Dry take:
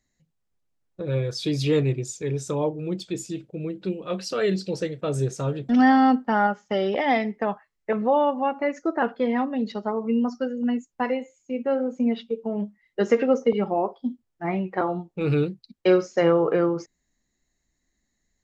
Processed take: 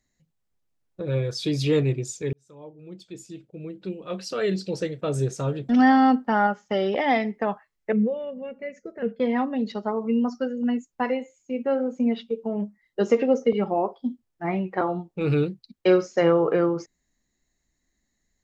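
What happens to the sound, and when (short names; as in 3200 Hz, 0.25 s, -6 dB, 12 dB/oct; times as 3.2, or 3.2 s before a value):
2.33–4.89 fade in
7.92–9.2 EQ curve 140 Hz 0 dB, 210 Hz +8 dB, 300 Hz -20 dB, 460 Hz +3 dB, 830 Hz -28 dB, 1200 Hz -23 dB, 2200 Hz -5 dB, 3800 Hz -14 dB, 11000 Hz -6 dB
12.55–13.53 bell 4200 Hz -> 890 Hz -14 dB 0.31 oct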